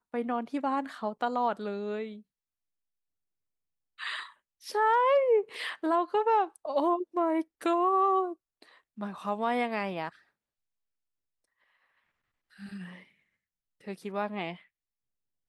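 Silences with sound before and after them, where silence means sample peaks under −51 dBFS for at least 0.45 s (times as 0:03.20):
0:02.21–0:03.98
0:10.15–0:12.53
0:13.03–0:13.81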